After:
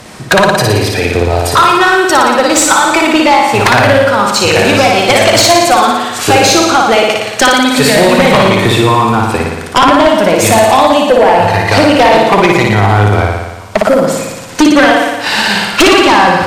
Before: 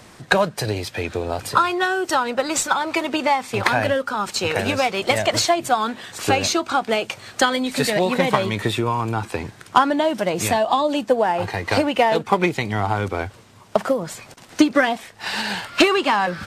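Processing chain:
flutter between parallel walls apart 9.9 metres, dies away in 1.1 s
sine wavefolder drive 8 dB, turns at −1.5 dBFS

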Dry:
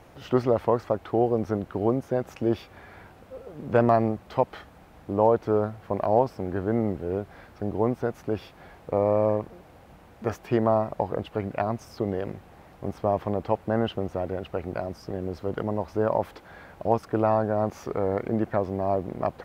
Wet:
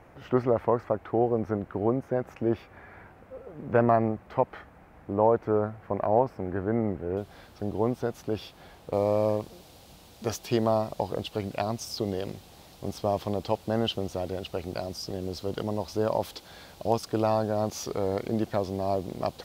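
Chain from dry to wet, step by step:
high shelf with overshoot 2,700 Hz −6 dB, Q 1.5, from 0:07.17 +6.5 dB, from 0:08.93 +13 dB
level −2 dB

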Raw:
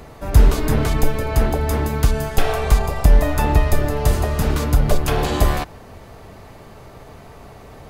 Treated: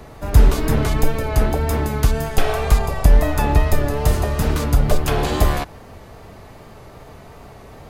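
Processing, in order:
tape wow and flutter 39 cents
echo ahead of the sound 118 ms −22.5 dB

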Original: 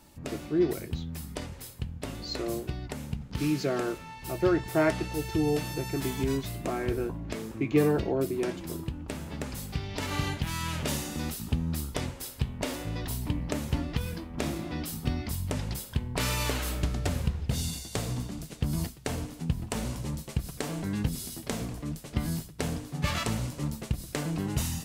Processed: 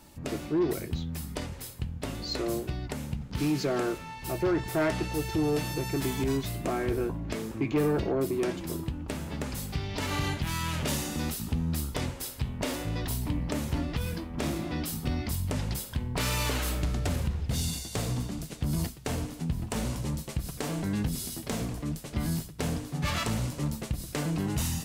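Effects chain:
in parallel at +1 dB: brickwall limiter −20 dBFS, peak gain reduction 7.5 dB
on the sum: soft clipping −16 dBFS, distortion −17 dB
level −4 dB

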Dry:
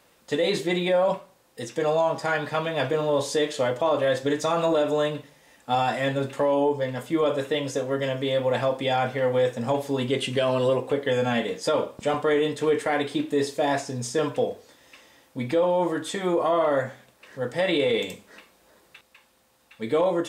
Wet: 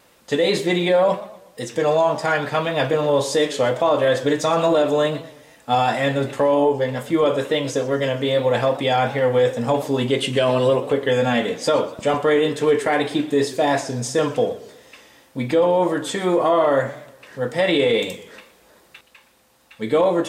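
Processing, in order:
tape wow and flutter 27 cents
feedback echo with a swinging delay time 121 ms, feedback 43%, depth 159 cents, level −17 dB
level +5 dB

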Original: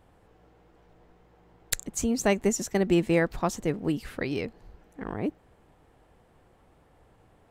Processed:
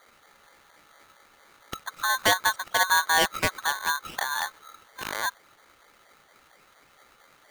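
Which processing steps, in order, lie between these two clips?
auto-filter low-pass saw up 4.3 Hz 630–2,400 Hz
ring modulator with a square carrier 1,300 Hz

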